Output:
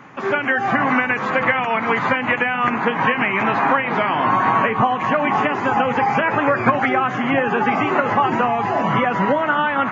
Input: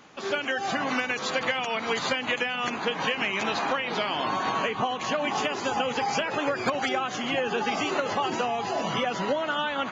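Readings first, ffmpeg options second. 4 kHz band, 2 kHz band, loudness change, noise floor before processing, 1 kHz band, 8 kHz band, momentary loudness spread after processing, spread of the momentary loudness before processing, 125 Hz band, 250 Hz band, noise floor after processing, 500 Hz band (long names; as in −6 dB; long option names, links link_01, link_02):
−2.5 dB, +9.5 dB, +9.0 dB, −35 dBFS, +11.0 dB, can't be measured, 2 LU, 2 LU, +13.0 dB, +11.0 dB, −25 dBFS, +7.5 dB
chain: -filter_complex "[0:a]equalizer=frequency=125:width_type=o:width=1:gain=10,equalizer=frequency=250:width_type=o:width=1:gain=5,equalizer=frequency=1000:width_type=o:width=1:gain=7,equalizer=frequency=2000:width_type=o:width=1:gain=9,equalizer=frequency=4000:width_type=o:width=1:gain=-8,acrossover=split=3200[link_01][link_02];[link_02]acompressor=threshold=-47dB:ratio=4:attack=1:release=60[link_03];[link_01][link_03]amix=inputs=2:normalize=0,highshelf=frequency=4000:gain=-7,flanger=delay=7.2:depth=3.2:regen=83:speed=0.27:shape=triangular,volume=8.5dB"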